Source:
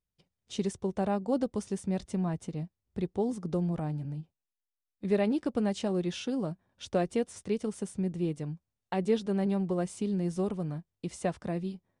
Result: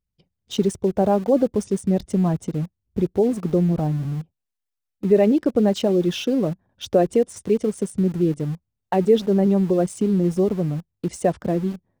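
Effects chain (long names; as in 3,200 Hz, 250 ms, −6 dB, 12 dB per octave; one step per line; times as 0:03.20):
spectral envelope exaggerated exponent 1.5
in parallel at −4.5 dB: centre clipping without the shift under −40 dBFS
on the sum: level +7 dB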